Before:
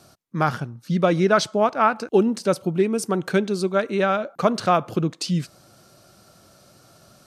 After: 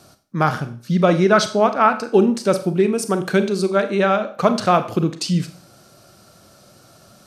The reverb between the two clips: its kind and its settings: Schroeder reverb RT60 0.42 s, combs from 30 ms, DRR 9.5 dB; gain +3 dB

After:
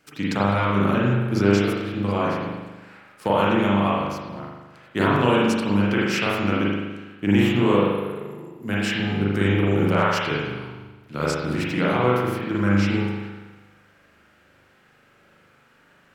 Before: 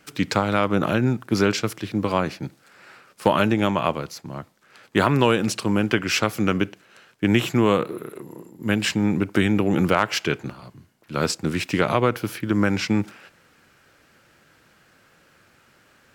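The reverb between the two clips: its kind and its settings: spring tank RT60 1.2 s, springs 40 ms, chirp 70 ms, DRR -6.5 dB; gain -7 dB

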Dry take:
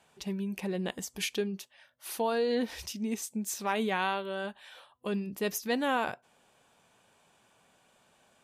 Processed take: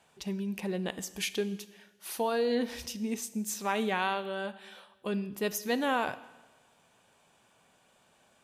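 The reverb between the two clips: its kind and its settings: Schroeder reverb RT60 1.2 s, combs from 26 ms, DRR 15 dB

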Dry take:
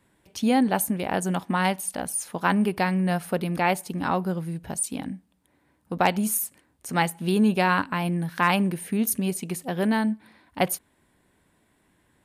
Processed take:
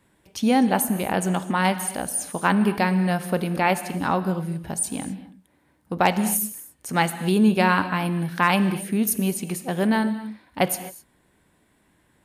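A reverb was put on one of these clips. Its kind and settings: non-linear reverb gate 0.28 s flat, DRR 11.5 dB; gain +2 dB

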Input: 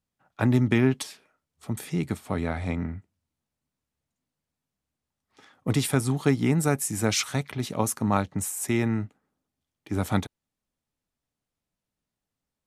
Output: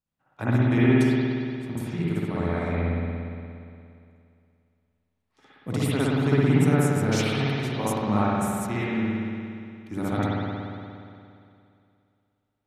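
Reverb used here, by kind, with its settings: spring tank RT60 2.5 s, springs 58 ms, chirp 45 ms, DRR -9.5 dB; gain -7.5 dB

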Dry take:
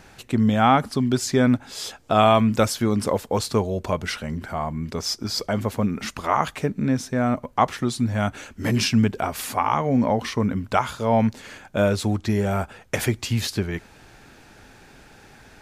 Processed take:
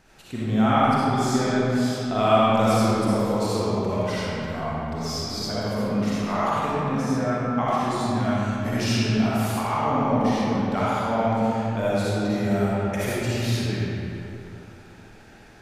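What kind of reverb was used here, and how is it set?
digital reverb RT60 3 s, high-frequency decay 0.6×, pre-delay 20 ms, DRR -9.5 dB; gain -10.5 dB

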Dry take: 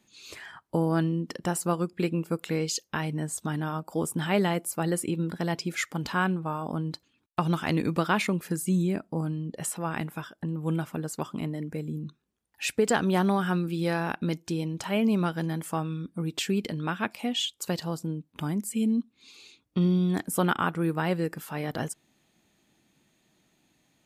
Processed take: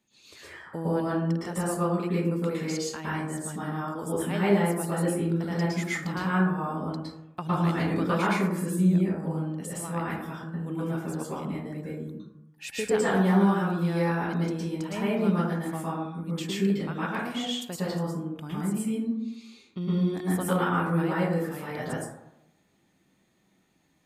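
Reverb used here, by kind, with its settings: plate-style reverb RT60 0.83 s, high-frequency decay 0.35×, pre-delay 0.1 s, DRR -8.5 dB; gain -9 dB

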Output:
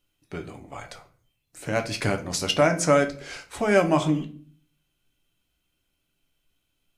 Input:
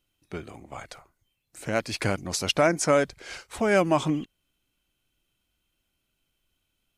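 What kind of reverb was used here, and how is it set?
shoebox room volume 39 m³, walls mixed, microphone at 0.3 m

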